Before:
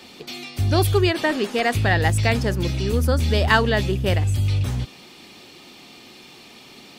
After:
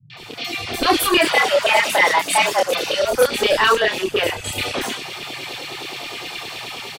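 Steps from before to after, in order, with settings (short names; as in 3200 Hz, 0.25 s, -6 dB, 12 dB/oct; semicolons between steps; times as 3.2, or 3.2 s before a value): AGC gain up to 8.5 dB; LFO high-pass saw down 9.6 Hz 300–3500 Hz; soft clip -15 dBFS, distortion -8 dB; chorus voices 2, 0.78 Hz, delay 28 ms, depth 2.2 ms; 1.19–3.03 frequency shift +180 Hz; three bands offset in time lows, mids, highs 0.1/0.17 s, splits 160/4900 Hz; band noise 100–170 Hz -59 dBFS; gain +8.5 dB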